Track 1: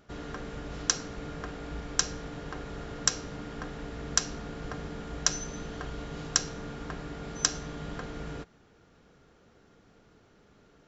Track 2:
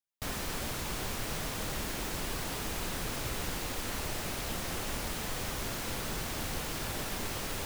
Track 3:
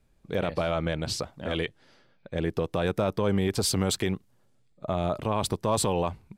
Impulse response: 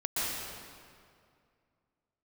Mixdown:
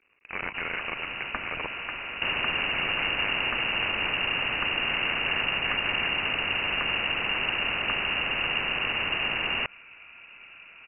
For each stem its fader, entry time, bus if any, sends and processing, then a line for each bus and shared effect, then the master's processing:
-7.0 dB, 0.45 s, no send, none
-1.5 dB, 2.00 s, no send, bass shelf 270 Hz +12 dB
-9.5 dB, 0.00 s, no send, cycle switcher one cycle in 3, muted; high-pass 410 Hz 6 dB/octave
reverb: none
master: frequency inversion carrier 2.8 kHz; spectrum-flattening compressor 2:1

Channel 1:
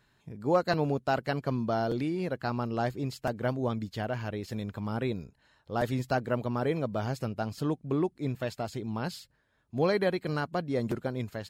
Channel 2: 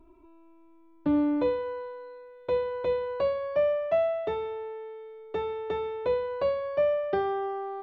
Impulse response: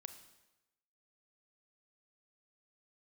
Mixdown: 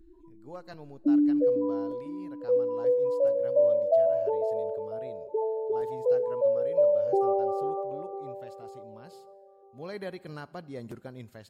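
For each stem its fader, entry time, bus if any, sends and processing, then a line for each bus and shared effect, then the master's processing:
9.75 s -20.5 dB -> 9.98 s -12.5 dB, 0.00 s, send -3.5 dB, no echo send, treble shelf 11 kHz +3.5 dB
+1.0 dB, 0.00 s, send -6.5 dB, echo send -8.5 dB, spectral gate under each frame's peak -10 dB strong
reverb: on, RT60 1.0 s, pre-delay 28 ms
echo: feedback delay 499 ms, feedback 50%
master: peaking EQ 9 kHz +4 dB 0.79 oct

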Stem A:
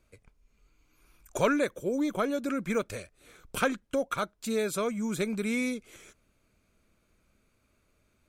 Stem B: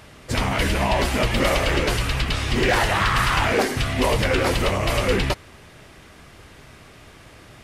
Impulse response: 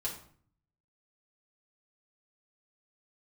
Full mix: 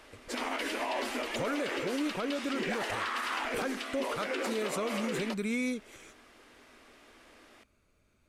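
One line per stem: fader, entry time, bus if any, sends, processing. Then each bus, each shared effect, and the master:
-1.5 dB, 0.00 s, no send, treble shelf 12 kHz -8 dB
-10.5 dB, 0.00 s, no send, Chebyshev high-pass 220 Hz, order 10; treble shelf 11 kHz -4 dB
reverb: none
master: gain riding within 4 dB 2 s; peak limiter -24 dBFS, peak gain reduction 10.5 dB

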